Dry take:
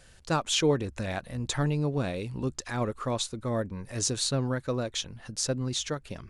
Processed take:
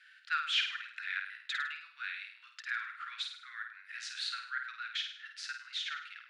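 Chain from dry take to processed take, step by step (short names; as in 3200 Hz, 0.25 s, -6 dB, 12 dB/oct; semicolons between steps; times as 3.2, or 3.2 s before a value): Chebyshev high-pass 1400 Hz, order 6; air absorption 410 m; on a send: flutter echo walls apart 8.9 m, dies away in 0.54 s; on the sum: gain +7 dB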